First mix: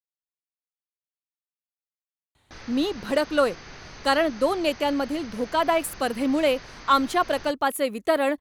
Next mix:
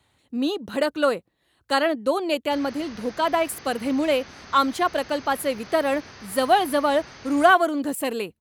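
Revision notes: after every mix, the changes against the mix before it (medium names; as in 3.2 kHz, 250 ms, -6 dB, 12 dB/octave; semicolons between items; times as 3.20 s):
speech: entry -2.35 s; master: add high-pass 63 Hz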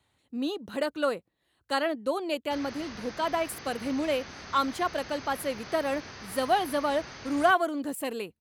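speech -6.5 dB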